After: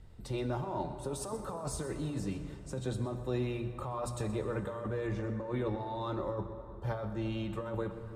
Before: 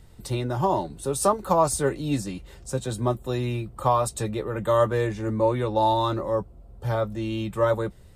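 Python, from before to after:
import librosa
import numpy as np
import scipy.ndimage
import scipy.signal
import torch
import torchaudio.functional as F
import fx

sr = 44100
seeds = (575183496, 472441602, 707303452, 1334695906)

p1 = fx.lowpass(x, sr, hz=3100.0, slope=6)
p2 = fx.low_shelf(p1, sr, hz=140.0, db=3.5)
p3 = fx.hum_notches(p2, sr, base_hz=60, count=4)
p4 = fx.over_compress(p3, sr, threshold_db=-27.0, ratio=-1.0)
p5 = p4 + fx.echo_single(p4, sr, ms=125, db=-15.5, dry=0)
p6 = fx.rev_plate(p5, sr, seeds[0], rt60_s=3.2, hf_ratio=0.55, predelay_ms=0, drr_db=8.0)
y = p6 * 10.0 ** (-8.5 / 20.0)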